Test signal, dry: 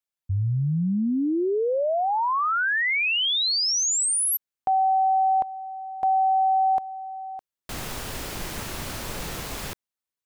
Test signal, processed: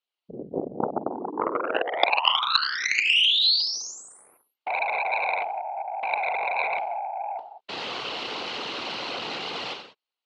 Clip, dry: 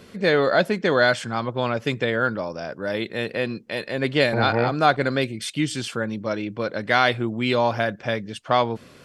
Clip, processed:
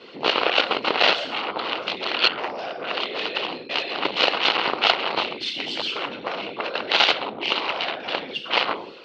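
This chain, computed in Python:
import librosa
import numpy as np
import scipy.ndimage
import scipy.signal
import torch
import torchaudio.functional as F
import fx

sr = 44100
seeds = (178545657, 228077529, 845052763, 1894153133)

p1 = fx.high_shelf(x, sr, hz=3100.0, db=-11.0)
p2 = fx.over_compress(p1, sr, threshold_db=-28.0, ratio=-1.0)
p3 = p1 + (p2 * librosa.db_to_amplitude(-2.0))
p4 = fx.rev_gated(p3, sr, seeds[0], gate_ms=220, shape='falling', drr_db=2.0)
p5 = fx.whisperise(p4, sr, seeds[1])
p6 = fx.cheby_harmonics(p5, sr, harmonics=(3, 4, 5, 7), levels_db=(-20, -25, -19, -10), full_scale_db=-1.5)
p7 = fx.cabinet(p6, sr, low_hz=440.0, low_slope=12, high_hz=5000.0, hz=(610.0, 1700.0, 2900.0, 4200.0), db=(-3, -7, 9, 8))
y = p7 * librosa.db_to_amplitude(-1.0)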